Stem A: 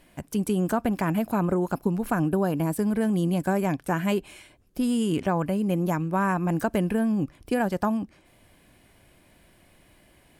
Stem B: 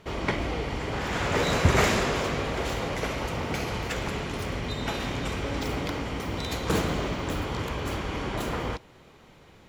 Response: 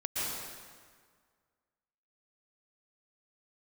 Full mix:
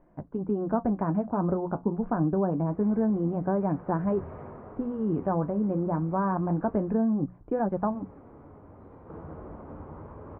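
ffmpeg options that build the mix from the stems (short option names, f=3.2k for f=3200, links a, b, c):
-filter_complex "[0:a]lowpass=9.5k,deesser=0.85,volume=2.5dB,asplit=2[a][b];[1:a]adelay=2400,volume=-10dB,asplit=3[c][d][e];[c]atrim=end=6.77,asetpts=PTS-STARTPTS,afade=t=out:st=6.766:d=0.004:c=hsin[f];[d]atrim=start=6.77:end=7.56,asetpts=PTS-STARTPTS,volume=0[g];[e]atrim=start=7.56,asetpts=PTS-STARTPTS,afade=t=in:d=0.004:c=hsin[h];[f][g][h]concat=n=3:v=0:a=1,asplit=2[i][j];[j]volume=-11.5dB[k];[b]apad=whole_len=533161[l];[i][l]sidechaincompress=threshold=-44dB:ratio=8:attack=16:release=940[m];[2:a]atrim=start_sample=2205[n];[k][n]afir=irnorm=-1:irlink=0[o];[a][m][o]amix=inputs=3:normalize=0,lowpass=f=1.2k:w=0.5412,lowpass=f=1.2k:w=1.3066,bandreject=f=60:t=h:w=6,bandreject=f=120:t=h:w=6,bandreject=f=180:t=h:w=6,flanger=delay=5.6:depth=8.5:regen=-55:speed=0.26:shape=triangular"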